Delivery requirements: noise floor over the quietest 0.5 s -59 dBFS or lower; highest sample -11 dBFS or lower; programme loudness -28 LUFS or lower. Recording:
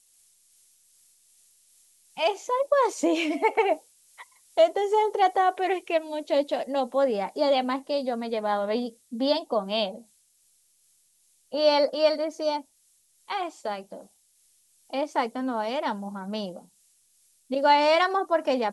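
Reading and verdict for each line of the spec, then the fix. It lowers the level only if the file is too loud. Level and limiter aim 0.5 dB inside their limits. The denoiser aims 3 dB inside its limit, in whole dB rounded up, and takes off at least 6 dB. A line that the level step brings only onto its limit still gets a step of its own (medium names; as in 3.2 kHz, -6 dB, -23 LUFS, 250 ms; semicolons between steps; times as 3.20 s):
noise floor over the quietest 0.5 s -65 dBFS: pass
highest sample -8.5 dBFS: fail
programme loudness -25.5 LUFS: fail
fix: trim -3 dB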